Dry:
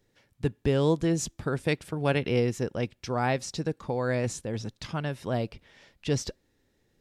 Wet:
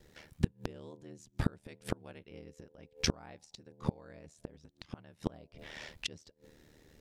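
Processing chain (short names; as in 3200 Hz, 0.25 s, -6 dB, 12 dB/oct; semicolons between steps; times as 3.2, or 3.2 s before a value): de-hum 158.9 Hz, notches 6; flipped gate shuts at -26 dBFS, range -34 dB; ring modulator 38 Hz; gain +12 dB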